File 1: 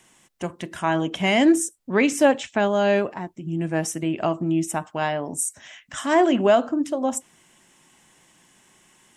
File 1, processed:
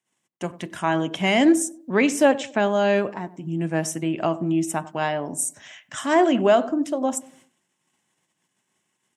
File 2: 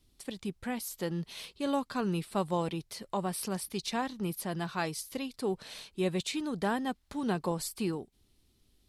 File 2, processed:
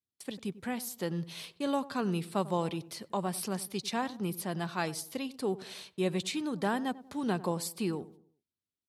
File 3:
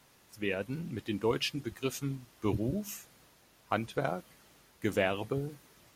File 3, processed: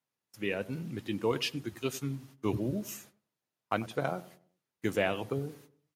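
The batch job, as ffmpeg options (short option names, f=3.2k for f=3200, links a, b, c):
-filter_complex "[0:a]agate=range=-27dB:threshold=-54dB:ratio=16:detection=peak,highpass=f=89:w=0.5412,highpass=f=89:w=1.3066,asplit=2[a][b];[b]adelay=95,lowpass=f=990:p=1,volume=-16dB,asplit=2[c][d];[d]adelay=95,lowpass=f=990:p=1,volume=0.42,asplit=2[e][f];[f]adelay=95,lowpass=f=990:p=1,volume=0.42,asplit=2[g][h];[h]adelay=95,lowpass=f=990:p=1,volume=0.42[i];[a][c][e][g][i]amix=inputs=5:normalize=0"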